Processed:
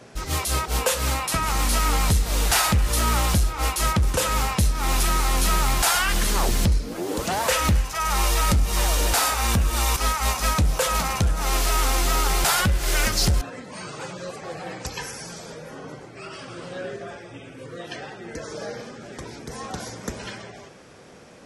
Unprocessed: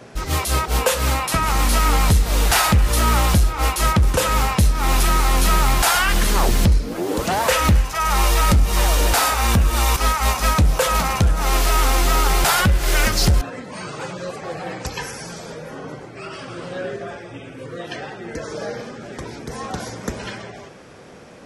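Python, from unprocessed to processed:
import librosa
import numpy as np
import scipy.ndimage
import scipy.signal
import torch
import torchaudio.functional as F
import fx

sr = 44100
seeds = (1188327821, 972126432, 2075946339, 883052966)

y = fx.peak_eq(x, sr, hz=7700.0, db=4.0, octaves=2.1)
y = y * 10.0 ** (-5.0 / 20.0)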